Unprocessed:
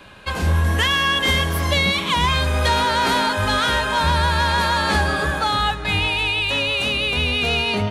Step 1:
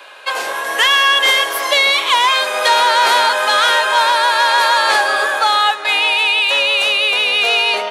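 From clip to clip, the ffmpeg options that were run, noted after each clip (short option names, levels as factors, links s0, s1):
-af "highpass=f=490:w=0.5412,highpass=f=490:w=1.3066,volume=2.24"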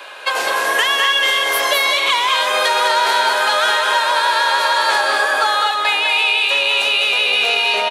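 -filter_complex "[0:a]acompressor=threshold=0.126:ratio=6,asplit=2[s0][s1];[s1]aecho=0:1:203|247:0.562|0.316[s2];[s0][s2]amix=inputs=2:normalize=0,volume=1.5"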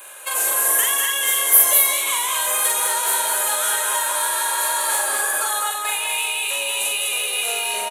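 -filter_complex "[0:a]asplit=2[s0][s1];[s1]adelay=43,volume=0.75[s2];[s0][s2]amix=inputs=2:normalize=0,aexciter=amount=9.3:drive=9.3:freq=7200,volume=0.282"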